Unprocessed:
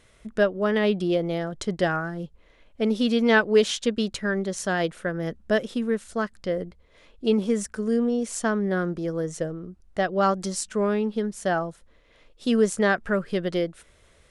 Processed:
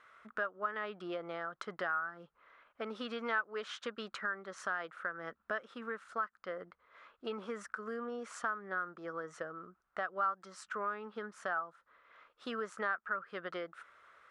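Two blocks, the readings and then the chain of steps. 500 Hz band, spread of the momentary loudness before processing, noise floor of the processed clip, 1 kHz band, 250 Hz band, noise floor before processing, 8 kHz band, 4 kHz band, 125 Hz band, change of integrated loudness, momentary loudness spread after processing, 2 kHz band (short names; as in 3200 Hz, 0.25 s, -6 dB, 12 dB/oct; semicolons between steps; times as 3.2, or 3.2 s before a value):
-18.0 dB, 10 LU, -79 dBFS, -8.0 dB, -23.0 dB, -58 dBFS, -21.5 dB, -16.0 dB, -26.0 dB, -14.5 dB, 11 LU, -9.0 dB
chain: band-pass 1300 Hz, Q 5; compressor 2.5:1, threshold -50 dBFS, peak gain reduction 18 dB; gain +11 dB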